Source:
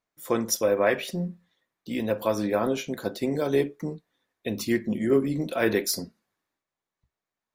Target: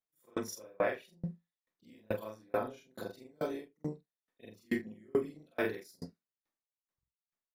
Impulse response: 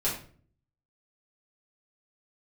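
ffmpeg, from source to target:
-af "afftfilt=real='re':imag='-im':win_size=4096:overlap=0.75,aeval=exprs='val(0)*pow(10,-36*if(lt(mod(2.3*n/s,1),2*abs(2.3)/1000),1-mod(2.3*n/s,1)/(2*abs(2.3)/1000),(mod(2.3*n/s,1)-2*abs(2.3)/1000)/(1-2*abs(2.3)/1000))/20)':c=same"

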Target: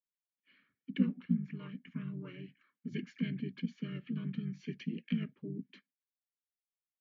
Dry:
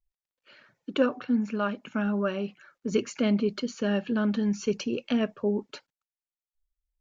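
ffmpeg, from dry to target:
-filter_complex "[0:a]asplit=3[s0][s1][s2];[s0]bandpass=f=270:t=q:w=8,volume=1[s3];[s1]bandpass=f=2290:t=q:w=8,volume=0.501[s4];[s2]bandpass=f=3010:t=q:w=8,volume=0.355[s5];[s3][s4][s5]amix=inputs=3:normalize=0,asplit=3[s6][s7][s8];[s7]asetrate=33038,aresample=44100,atempo=1.33484,volume=0.631[s9];[s8]asetrate=35002,aresample=44100,atempo=1.25992,volume=0.562[s10];[s6][s9][s10]amix=inputs=3:normalize=0,afreqshift=-13,volume=0.708"

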